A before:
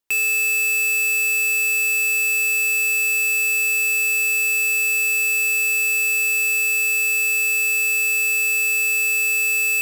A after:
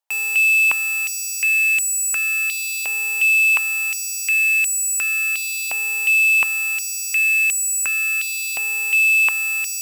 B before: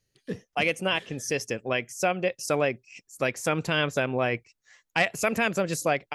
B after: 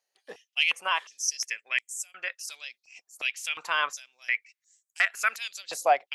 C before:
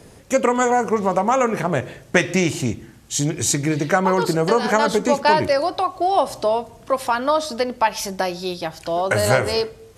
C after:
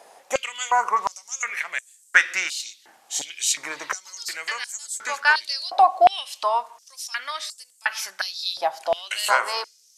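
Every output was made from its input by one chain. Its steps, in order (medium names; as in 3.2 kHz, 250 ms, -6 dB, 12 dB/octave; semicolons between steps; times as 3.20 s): step-sequenced high-pass 2.8 Hz 750–7900 Hz; trim -3.5 dB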